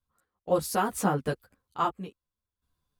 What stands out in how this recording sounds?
random-step tremolo 4.2 Hz, depth 85%; a shimmering, thickened sound

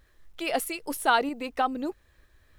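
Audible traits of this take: tremolo saw up 3.1 Hz, depth 40%; a quantiser's noise floor 12-bit, dither none

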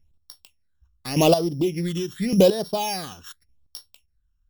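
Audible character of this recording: a buzz of ramps at a fixed pitch in blocks of 8 samples; phasing stages 8, 0.86 Hz, lowest notch 620–2300 Hz; chopped level 0.86 Hz, depth 65%, duty 15%

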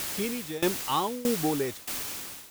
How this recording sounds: a quantiser's noise floor 6-bit, dither triangular; tremolo saw down 1.6 Hz, depth 90%

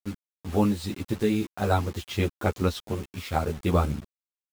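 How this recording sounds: tremolo triangle 0.56 Hz, depth 45%; a quantiser's noise floor 8-bit, dither none; a shimmering, thickened sound

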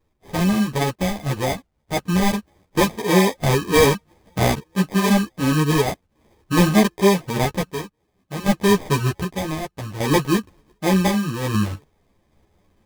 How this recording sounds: a quantiser's noise floor 12-bit, dither none; random-step tremolo 1.3 Hz, depth 80%; aliases and images of a low sample rate 1.4 kHz, jitter 0%; a shimmering, thickened sound

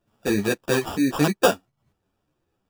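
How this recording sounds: aliases and images of a low sample rate 2.1 kHz, jitter 0%; a shimmering, thickened sound

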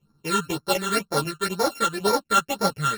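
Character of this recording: a buzz of ramps at a fixed pitch in blocks of 32 samples; phasing stages 8, 2 Hz, lowest notch 660–2800 Hz; chopped level 4 Hz, depth 60%, duty 90%; a shimmering, thickened sound

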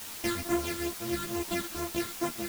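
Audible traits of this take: a buzz of ramps at a fixed pitch in blocks of 128 samples; phasing stages 8, 2.3 Hz, lowest notch 710–4600 Hz; a quantiser's noise floor 6-bit, dither triangular; a shimmering, thickened sound

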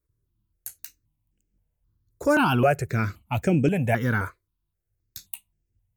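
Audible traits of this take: notches that jump at a steady rate 3.8 Hz 780–3900 Hz

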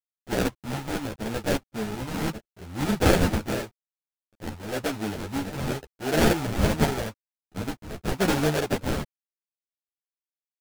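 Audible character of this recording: a quantiser's noise floor 10-bit, dither none; phasing stages 6, 0.86 Hz, lowest notch 420–1300 Hz; aliases and images of a low sample rate 1.1 kHz, jitter 20%; a shimmering, thickened sound

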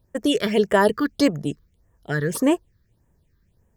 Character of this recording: phasing stages 6, 1.7 Hz, lowest notch 700–4300 Hz

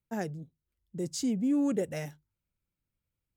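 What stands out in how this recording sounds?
noise floor -88 dBFS; spectral tilt -5.5 dB/octave

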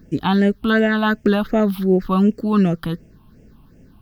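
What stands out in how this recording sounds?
phasing stages 6, 2.7 Hz, lowest notch 490–1100 Hz

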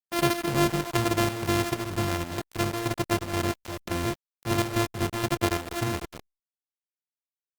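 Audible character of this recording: a buzz of ramps at a fixed pitch in blocks of 128 samples; chopped level 2.1 Hz, depth 60%, duty 70%; a quantiser's noise floor 6-bit, dither none; Opus

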